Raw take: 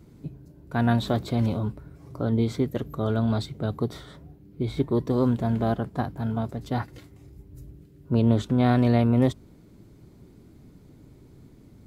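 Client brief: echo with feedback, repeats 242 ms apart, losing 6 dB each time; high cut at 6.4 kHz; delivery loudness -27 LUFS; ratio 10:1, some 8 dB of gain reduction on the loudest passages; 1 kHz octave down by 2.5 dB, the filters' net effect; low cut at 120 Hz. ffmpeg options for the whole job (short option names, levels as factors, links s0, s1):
-af "highpass=120,lowpass=6400,equalizer=f=1000:t=o:g=-4,acompressor=threshold=0.0562:ratio=10,aecho=1:1:242|484|726|968|1210|1452:0.501|0.251|0.125|0.0626|0.0313|0.0157,volume=1.68"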